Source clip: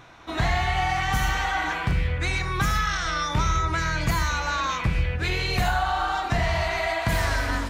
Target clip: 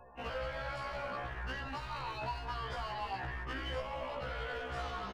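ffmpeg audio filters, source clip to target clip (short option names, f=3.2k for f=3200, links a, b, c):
-filter_complex "[0:a]afftfilt=real='re*gte(hypot(re,im),0.00631)':imag='im*gte(hypot(re,im),0.00631)':win_size=1024:overlap=0.75,asplit=4[a][b][c][d];[b]adelay=186,afreqshift=140,volume=-17.5dB[e];[c]adelay=372,afreqshift=280,volume=-26.1dB[f];[d]adelay=558,afreqshift=420,volume=-34.8dB[g];[a][e][f][g]amix=inputs=4:normalize=0,asetrate=32097,aresample=44100,atempo=1.37395,acrossover=split=340|910|3400[h][i][j][k];[h]acompressor=threshold=-38dB:ratio=4[l];[i]acompressor=threshold=-37dB:ratio=4[m];[j]acompressor=threshold=-39dB:ratio=4[n];[k]acompressor=threshold=-47dB:ratio=4[o];[l][m][n][o]amix=inputs=4:normalize=0,lowpass=5k,bandreject=f=50:t=h:w=6,bandreject=f=100:t=h:w=6,bandreject=f=150:t=h:w=6,bandreject=f=200:t=h:w=6,bandreject=f=250:t=h:w=6,atempo=1.5,asplit=2[p][q];[q]aeval=exprs='0.0282*(abs(mod(val(0)/0.0282+3,4)-2)-1)':c=same,volume=-6dB[r];[p][r]amix=inputs=2:normalize=0,afftfilt=real='re*1.73*eq(mod(b,3),0)':imag='im*1.73*eq(mod(b,3),0)':win_size=2048:overlap=0.75,volume=-5.5dB"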